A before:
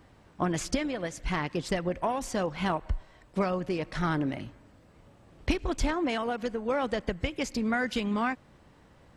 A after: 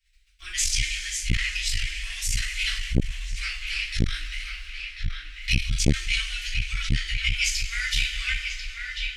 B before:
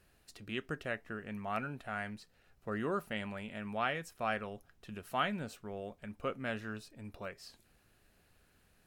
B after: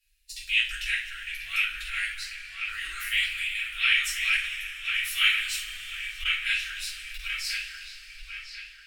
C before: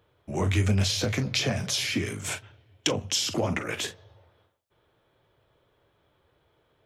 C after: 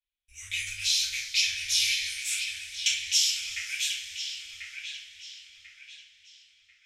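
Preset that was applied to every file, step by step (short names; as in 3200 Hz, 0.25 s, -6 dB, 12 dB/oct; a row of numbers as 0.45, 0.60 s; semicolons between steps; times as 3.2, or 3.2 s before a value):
gate -54 dBFS, range -20 dB; inverse Chebyshev band-stop 110–970 Hz, stop band 50 dB; on a send: dark delay 1.041 s, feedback 33%, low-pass 3600 Hz, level -5.5 dB; on the sum: two-slope reverb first 0.39 s, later 4.2 s, from -19 dB, DRR -8 dB; core saturation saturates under 250 Hz; match loudness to -27 LUFS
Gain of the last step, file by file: +7.0, +13.5, -4.5 dB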